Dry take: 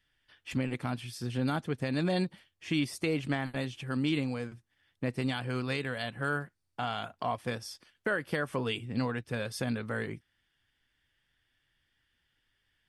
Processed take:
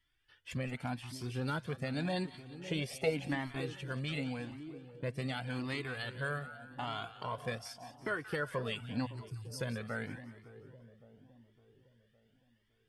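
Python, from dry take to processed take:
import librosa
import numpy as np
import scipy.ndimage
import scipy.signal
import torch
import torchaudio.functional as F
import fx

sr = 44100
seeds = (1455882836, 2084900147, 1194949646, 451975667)

y = fx.spec_box(x, sr, start_s=2.63, length_s=0.46, low_hz=380.0, high_hz=910.0, gain_db=12)
y = fx.cheby1_bandstop(y, sr, low_hz=170.0, high_hz=4800.0, order=5, at=(9.05, 9.58), fade=0.02)
y = fx.echo_split(y, sr, split_hz=830.0, low_ms=560, high_ms=180, feedback_pct=52, wet_db=-13)
y = fx.comb_cascade(y, sr, direction='rising', hz=0.87)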